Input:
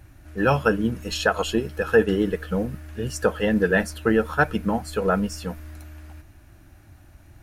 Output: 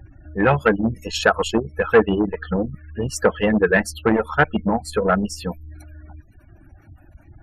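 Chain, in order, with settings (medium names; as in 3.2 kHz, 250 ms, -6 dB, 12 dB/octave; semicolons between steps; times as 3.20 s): reverb removal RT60 0.87 s; spectral gate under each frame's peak -25 dB strong; transformer saturation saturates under 670 Hz; trim +5.5 dB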